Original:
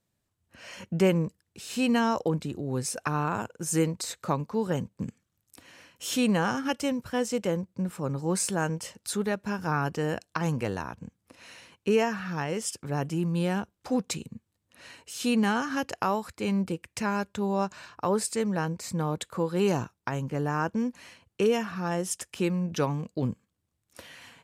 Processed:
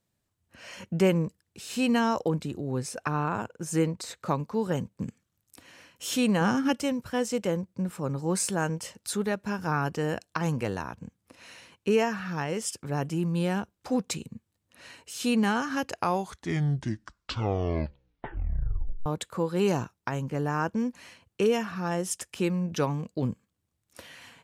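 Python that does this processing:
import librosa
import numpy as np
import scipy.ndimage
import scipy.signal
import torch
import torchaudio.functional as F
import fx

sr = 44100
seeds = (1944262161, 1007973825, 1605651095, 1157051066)

y = fx.high_shelf(x, sr, hz=5100.0, db=-8.0, at=(2.71, 4.26))
y = fx.peak_eq(y, sr, hz=220.0, db=7.0, octaves=1.3, at=(6.41, 6.82))
y = fx.edit(y, sr, fx.tape_stop(start_s=15.85, length_s=3.21), tone=tone)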